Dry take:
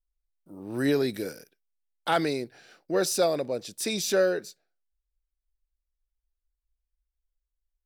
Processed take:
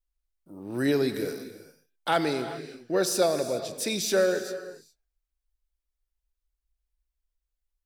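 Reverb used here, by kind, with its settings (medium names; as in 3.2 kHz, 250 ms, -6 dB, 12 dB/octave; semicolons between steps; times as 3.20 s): gated-style reverb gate 440 ms flat, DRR 9 dB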